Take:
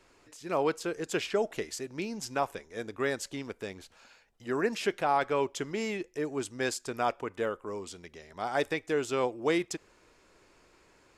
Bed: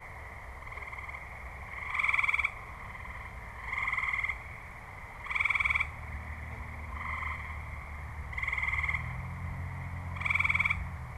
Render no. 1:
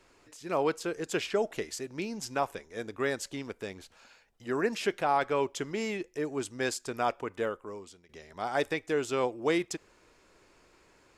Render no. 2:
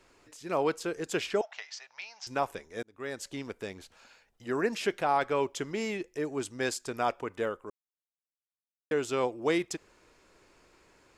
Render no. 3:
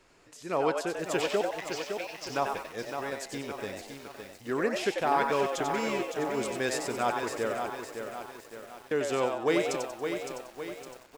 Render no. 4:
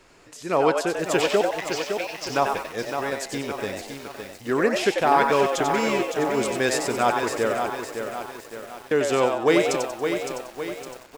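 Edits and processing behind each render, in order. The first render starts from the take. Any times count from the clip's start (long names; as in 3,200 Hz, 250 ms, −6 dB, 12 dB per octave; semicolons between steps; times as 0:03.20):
0:07.44–0:08.09: fade out, to −16.5 dB
0:01.41–0:02.27: elliptic band-pass filter 760–5,700 Hz; 0:02.83–0:03.39: fade in linear; 0:07.70–0:08.91: silence
echo with shifted repeats 93 ms, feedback 37%, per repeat +130 Hz, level −5.5 dB; feedback echo at a low word length 561 ms, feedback 55%, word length 8 bits, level −6.5 dB
level +7.5 dB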